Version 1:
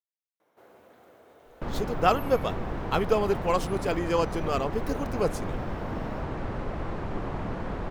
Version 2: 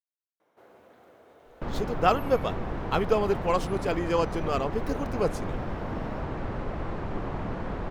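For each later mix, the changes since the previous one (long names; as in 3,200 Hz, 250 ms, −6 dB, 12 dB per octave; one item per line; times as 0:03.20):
master: add high-shelf EQ 8,000 Hz −6.5 dB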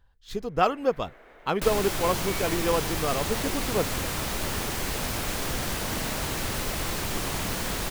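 speech: entry −1.45 s
first sound: add parametric band 2,000 Hz +12.5 dB 1.2 octaves
second sound: remove low-pass filter 1,100 Hz 12 dB per octave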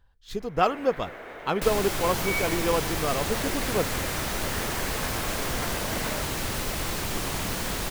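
first sound +11.5 dB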